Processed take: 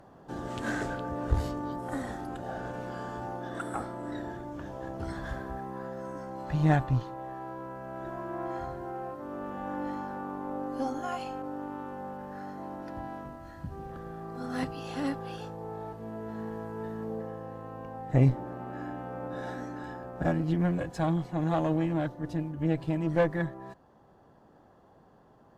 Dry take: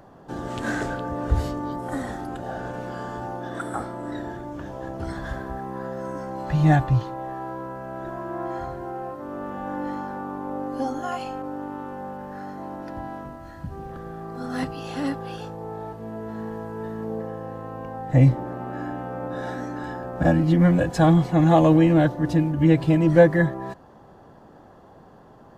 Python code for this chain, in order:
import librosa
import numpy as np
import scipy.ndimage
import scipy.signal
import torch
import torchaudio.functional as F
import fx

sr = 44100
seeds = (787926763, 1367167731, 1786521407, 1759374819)

y = fx.cheby_harmonics(x, sr, harmonics=(4,), levels_db=(-16,), full_scale_db=-3.0)
y = fx.rider(y, sr, range_db=4, speed_s=2.0)
y = F.gain(torch.from_numpy(y), -9.0).numpy()